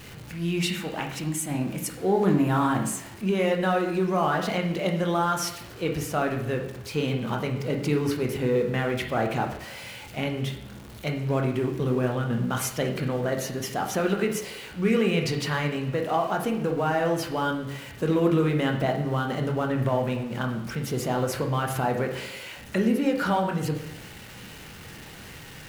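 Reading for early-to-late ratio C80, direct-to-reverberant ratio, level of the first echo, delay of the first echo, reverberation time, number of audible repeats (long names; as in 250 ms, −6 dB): 10.0 dB, 2.0 dB, no echo audible, no echo audible, 0.85 s, no echo audible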